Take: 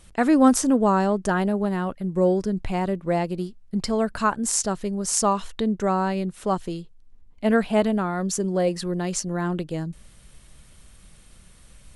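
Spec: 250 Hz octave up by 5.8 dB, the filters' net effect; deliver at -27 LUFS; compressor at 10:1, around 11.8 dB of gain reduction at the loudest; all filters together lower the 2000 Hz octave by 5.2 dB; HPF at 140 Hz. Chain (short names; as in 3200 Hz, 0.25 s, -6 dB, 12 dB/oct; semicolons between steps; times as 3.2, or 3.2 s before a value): HPF 140 Hz; bell 250 Hz +8 dB; bell 2000 Hz -7.5 dB; compressor 10:1, threshold -17 dBFS; gain -3 dB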